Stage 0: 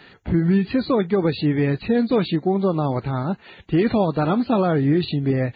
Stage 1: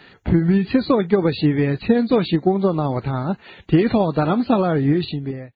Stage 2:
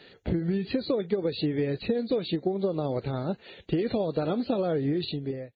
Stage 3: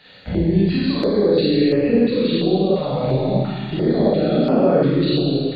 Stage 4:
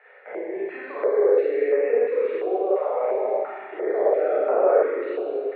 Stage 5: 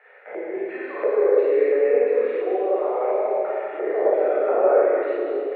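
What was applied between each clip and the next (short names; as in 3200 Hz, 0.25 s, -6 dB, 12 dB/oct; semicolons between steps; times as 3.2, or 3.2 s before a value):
ending faded out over 0.65 s; transient shaper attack +6 dB, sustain +2 dB
graphic EQ 500/1000/4000 Hz +10/-6/+7 dB; compressor, threshold -15 dBFS, peak gain reduction 10 dB; gain -8.5 dB
Schroeder reverb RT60 2.1 s, combs from 30 ms, DRR -9 dB; stepped notch 2.9 Hz 360–3800 Hz; gain +2.5 dB
Chebyshev band-pass 410–2200 Hz, order 4
plate-style reverb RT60 1.6 s, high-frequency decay 0.9×, pre-delay 90 ms, DRR 3 dB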